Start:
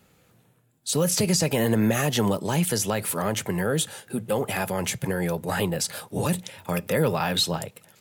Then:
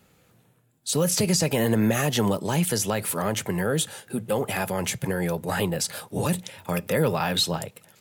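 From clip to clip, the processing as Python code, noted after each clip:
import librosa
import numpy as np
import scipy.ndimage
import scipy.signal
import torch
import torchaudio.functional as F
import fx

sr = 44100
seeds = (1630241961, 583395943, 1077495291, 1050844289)

y = x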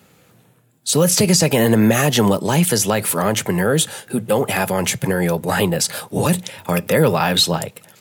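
y = scipy.signal.sosfilt(scipy.signal.butter(2, 90.0, 'highpass', fs=sr, output='sos'), x)
y = F.gain(torch.from_numpy(y), 8.0).numpy()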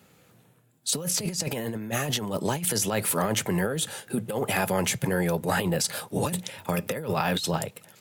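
y = fx.over_compress(x, sr, threshold_db=-18.0, ratio=-0.5)
y = F.gain(torch.from_numpy(y), -8.0).numpy()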